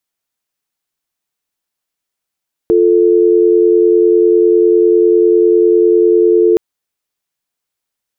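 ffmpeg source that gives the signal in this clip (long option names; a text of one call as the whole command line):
ffmpeg -f lavfi -i "aevalsrc='0.355*(sin(2*PI*350*t)+sin(2*PI*440*t))':duration=3.87:sample_rate=44100" out.wav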